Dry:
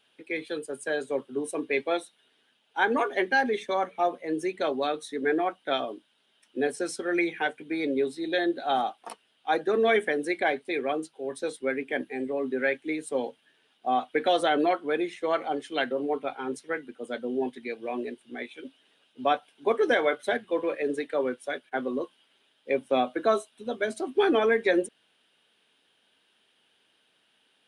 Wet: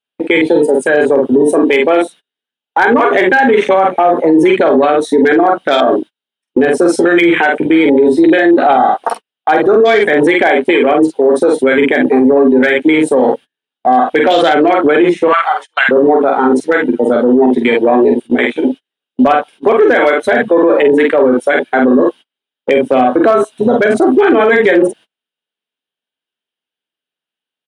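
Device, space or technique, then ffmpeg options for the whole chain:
loud club master: -filter_complex "[0:a]afwtdn=0.0141,asettb=1/sr,asplit=3[a][b][c];[a]atrim=end=15.284[d];[b]atrim=start=15.28:end=15.89,asetpts=PTS-STARTPTS,afade=t=in:d=0.004:c=qsin,afade=t=out:st=0.606:d=0.004:c=qsin,highpass=f=1.1k:w=0.5412,highpass=f=1.1k:w=1.3066[e];[c]atrim=start=15.886[f];[d][e]acrossfade=d=0.004:c1=hsin:c2=qsin[g];[g][f]acrossfade=d=0.004:c1=qsin:c2=hsin,aecho=1:1:12|47:0.266|0.562,agate=range=-33dB:threshold=-49dB:ratio=16:detection=peak,acompressor=threshold=-25dB:ratio=2.5,asoftclip=type=hard:threshold=-18.5dB,alimiter=level_in=30.5dB:limit=-1dB:release=50:level=0:latency=1,volume=-1dB"

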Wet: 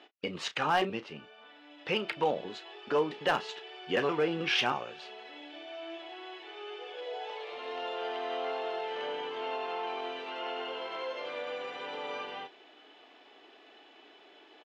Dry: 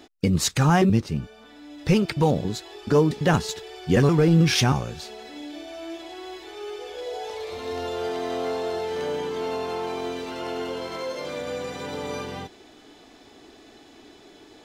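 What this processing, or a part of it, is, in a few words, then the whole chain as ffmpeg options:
megaphone: -filter_complex "[0:a]highpass=520,lowpass=2.6k,equalizer=f=2.9k:t=o:w=0.41:g=9,asoftclip=type=hard:threshold=-15.5dB,asplit=2[a][b];[b]adelay=33,volume=-13.5dB[c];[a][c]amix=inputs=2:normalize=0,volume=-3.5dB"

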